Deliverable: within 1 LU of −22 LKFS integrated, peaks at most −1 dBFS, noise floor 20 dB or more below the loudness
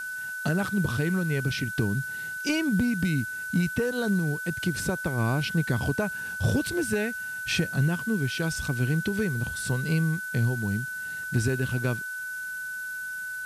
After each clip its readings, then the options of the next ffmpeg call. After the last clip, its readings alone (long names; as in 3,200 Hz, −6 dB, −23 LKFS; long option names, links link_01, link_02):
interfering tone 1,500 Hz; level of the tone −32 dBFS; background noise floor −35 dBFS; target noise floor −48 dBFS; integrated loudness −27.5 LKFS; sample peak −14.0 dBFS; target loudness −22.0 LKFS
→ -af "bandreject=frequency=1500:width=30"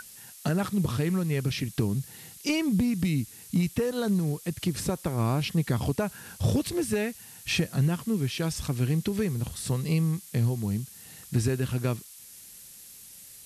interfering tone none found; background noise floor −48 dBFS; target noise floor −49 dBFS
→ -af "afftdn=noise_reduction=6:noise_floor=-48"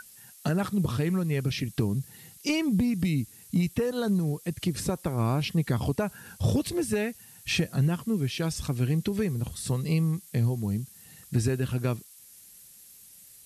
background noise floor −52 dBFS; integrated loudness −28.5 LKFS; sample peak −15.0 dBFS; target loudness −22.0 LKFS
→ -af "volume=6.5dB"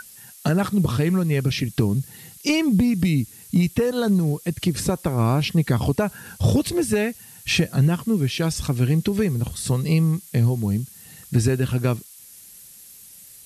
integrated loudness −22.0 LKFS; sample peak −8.5 dBFS; background noise floor −45 dBFS